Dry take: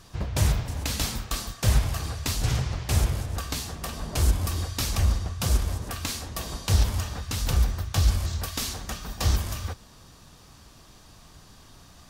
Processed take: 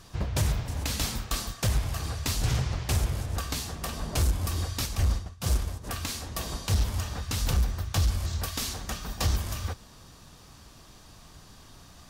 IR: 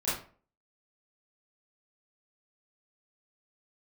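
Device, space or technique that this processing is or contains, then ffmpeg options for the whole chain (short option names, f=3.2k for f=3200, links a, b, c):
limiter into clipper: -filter_complex "[0:a]asplit=3[a][b][c];[a]afade=t=out:st=4.85:d=0.02[d];[b]agate=range=-33dB:threshold=-22dB:ratio=3:detection=peak,afade=t=in:st=4.85:d=0.02,afade=t=out:st=5.83:d=0.02[e];[c]afade=t=in:st=5.83:d=0.02[f];[d][e][f]amix=inputs=3:normalize=0,alimiter=limit=-15dB:level=0:latency=1:release=395,asoftclip=type=hard:threshold=-18.5dB"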